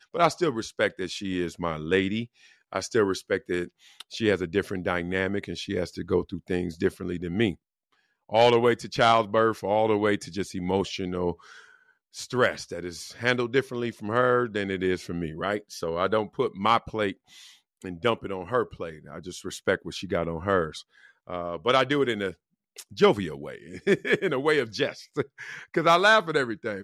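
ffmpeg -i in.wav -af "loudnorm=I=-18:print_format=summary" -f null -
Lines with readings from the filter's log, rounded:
Input Integrated:    -26.0 LUFS
Input True Peak:      -9.1 dBTP
Input LRA:             5.5 LU
Input Threshold:     -36.6 LUFS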